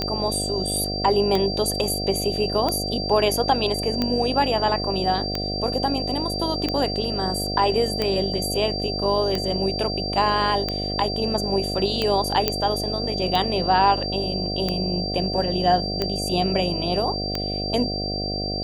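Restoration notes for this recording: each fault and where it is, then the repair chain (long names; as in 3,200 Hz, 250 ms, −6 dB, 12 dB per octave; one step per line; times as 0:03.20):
mains buzz 50 Hz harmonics 15 −29 dBFS
scratch tick 45 rpm −10 dBFS
whistle 4,700 Hz −28 dBFS
0:12.48: click −4 dBFS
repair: click removal
hum removal 50 Hz, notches 15
notch filter 4,700 Hz, Q 30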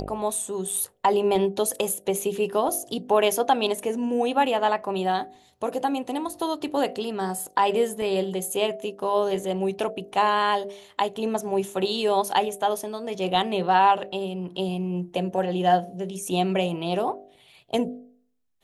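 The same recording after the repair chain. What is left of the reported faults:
none of them is left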